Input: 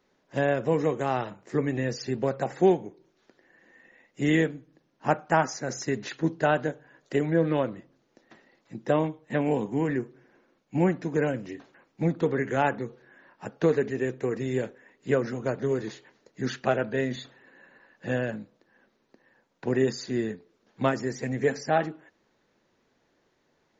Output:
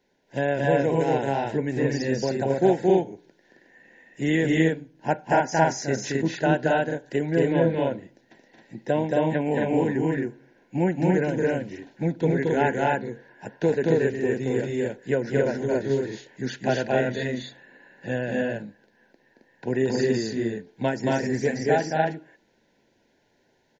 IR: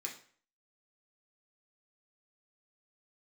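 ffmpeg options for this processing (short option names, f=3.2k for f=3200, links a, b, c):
-filter_complex "[0:a]asuperstop=centerf=1200:order=8:qfactor=3.3,asplit=2[a][b];[b]aecho=0:1:224.5|268.2:0.794|0.891[c];[a][c]amix=inputs=2:normalize=0"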